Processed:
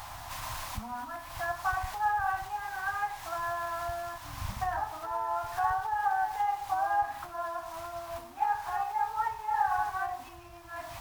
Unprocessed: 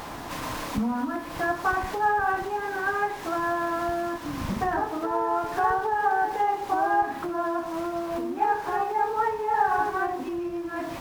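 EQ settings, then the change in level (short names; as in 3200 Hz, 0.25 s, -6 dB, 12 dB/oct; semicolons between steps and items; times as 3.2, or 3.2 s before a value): EQ curve 110 Hz 0 dB, 160 Hz -14 dB, 410 Hz -26 dB, 730 Hz -3 dB, 1700 Hz -5 dB, 15000 Hz +2 dB; -1.5 dB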